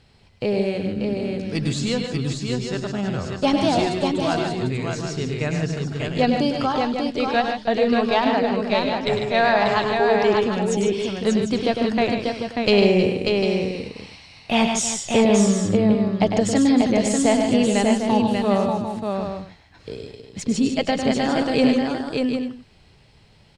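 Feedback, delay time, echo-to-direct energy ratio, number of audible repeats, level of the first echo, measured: repeats not evenly spaced, 102 ms, −0.5 dB, 6, −7.0 dB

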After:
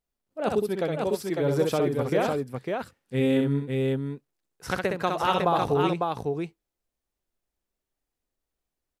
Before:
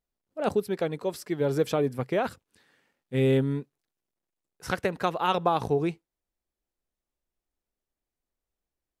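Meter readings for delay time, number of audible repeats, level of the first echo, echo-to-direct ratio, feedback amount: 64 ms, 2, −4.5 dB, −1.0 dB, repeats not evenly spaced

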